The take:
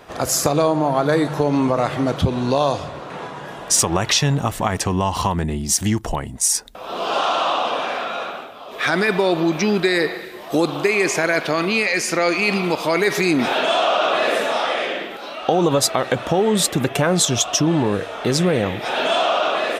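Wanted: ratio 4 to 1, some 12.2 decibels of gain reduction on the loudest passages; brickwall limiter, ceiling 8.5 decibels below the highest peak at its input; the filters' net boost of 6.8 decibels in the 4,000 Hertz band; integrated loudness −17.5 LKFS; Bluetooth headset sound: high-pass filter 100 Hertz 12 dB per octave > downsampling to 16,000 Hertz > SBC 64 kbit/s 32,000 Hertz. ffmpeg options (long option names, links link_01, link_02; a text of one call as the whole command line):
ffmpeg -i in.wav -af "equalizer=frequency=4000:width_type=o:gain=8.5,acompressor=threshold=-24dB:ratio=4,alimiter=limit=-17.5dB:level=0:latency=1,highpass=100,aresample=16000,aresample=44100,volume=10dB" -ar 32000 -c:a sbc -b:a 64k out.sbc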